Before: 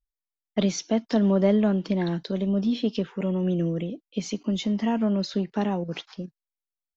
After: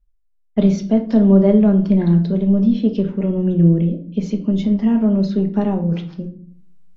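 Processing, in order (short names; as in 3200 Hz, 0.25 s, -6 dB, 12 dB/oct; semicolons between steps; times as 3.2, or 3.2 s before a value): tilt -3 dB/oct; notches 60/120/180 Hz; reverse; upward compressor, threshold -43 dBFS; reverse; reverb RT60 0.55 s, pre-delay 5 ms, DRR 4 dB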